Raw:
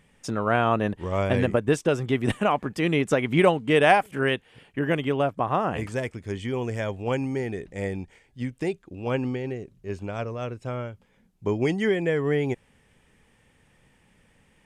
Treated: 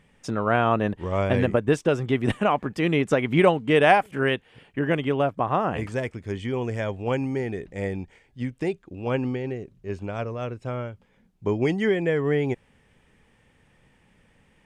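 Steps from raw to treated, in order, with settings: treble shelf 6.4 kHz -8 dB; trim +1 dB

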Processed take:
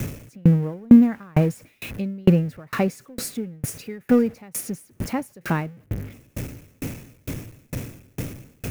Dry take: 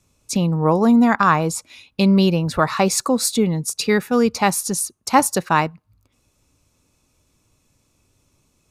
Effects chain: jump at every zero crossing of -21.5 dBFS; graphic EQ 125/250/500/1000/2000/4000/8000 Hz +10/+5/+5/-8/+5/-9/-6 dB; sawtooth tremolo in dB decaying 2.2 Hz, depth 37 dB; trim -1.5 dB

